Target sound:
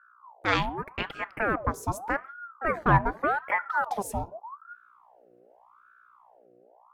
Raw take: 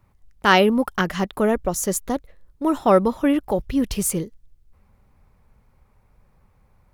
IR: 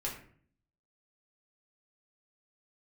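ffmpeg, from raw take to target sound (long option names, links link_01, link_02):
-filter_complex "[0:a]afwtdn=0.0398,equalizer=frequency=170:width_type=o:width=2.1:gain=-9,dynaudnorm=framelen=160:gausssize=9:maxgain=10dB,aeval=exprs='val(0)+0.00355*(sin(2*PI*60*n/s)+sin(2*PI*2*60*n/s)/2+sin(2*PI*3*60*n/s)/3+sin(2*PI*4*60*n/s)/4+sin(2*PI*5*60*n/s)/5)':channel_layout=same,asplit=2[link_01][link_02];[1:a]atrim=start_sample=2205,afade=type=out:start_time=0.22:duration=0.01,atrim=end_sample=10143[link_03];[link_02][link_03]afir=irnorm=-1:irlink=0,volume=-18dB[link_04];[link_01][link_04]amix=inputs=2:normalize=0,aeval=exprs='val(0)*sin(2*PI*930*n/s+930*0.55/0.84*sin(2*PI*0.84*n/s))':channel_layout=same,volume=-6.5dB"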